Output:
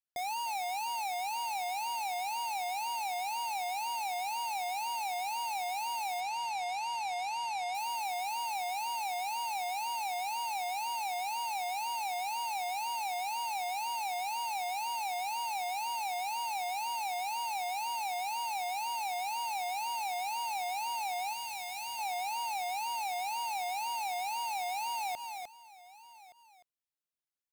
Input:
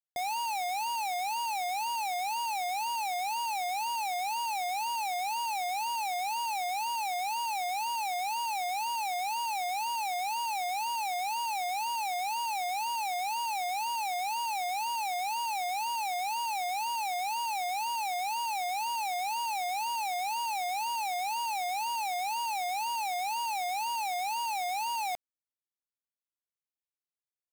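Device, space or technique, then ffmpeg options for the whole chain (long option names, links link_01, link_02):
ducked delay: -filter_complex "[0:a]asettb=1/sr,asplit=3[link_01][link_02][link_03];[link_01]atrim=end=6.204[link_04];[link_02]atrim=start=6.2:end=7.75,asetpts=PTS-STARTPTS,afade=type=in:duration=0.004:curve=qsin,afade=type=out:start_time=1.546:duration=0.004:curve=qsin,lowpass=7400[link_05];[link_03]atrim=start=7.746[link_06];[link_04][link_05]acrossfade=duration=0.004:curve1=hsin:curve2=qsin[link_07];[link_07][link_06]acrossfade=duration=0.004:curve1=qsin:curve2=hsin,asplit=3[link_08][link_09][link_10];[link_09]adelay=303,volume=-6dB[link_11];[link_10]apad=whole_len=1227335[link_12];[link_11][link_12]sidechaincompress=threshold=-42dB:ratio=8:attack=16:release=107[link_13];[link_08][link_13]amix=inputs=2:normalize=0,asettb=1/sr,asplit=3[link_14][link_15][link_16];[link_14]atrim=end=21.334[link_17];[link_15]atrim=start=21.33:end=21.99,asetpts=PTS-STARTPTS,afade=type=in:duration=0.004:curve=qsin,afade=type=out:start_time=0.656:duration=0.004:curve=qsin,equalizer=frequency=650:width=0.79:gain=-8[link_18];[link_16]atrim=start=21.986[link_19];[link_17][link_18]acrossfade=duration=0.004:curve1=hsin:curve2=qsin[link_20];[link_20][link_19]acrossfade=duration=0.004:curve1=qsin:curve2=hsin,aecho=1:1:1170:0.106,volume=-3dB"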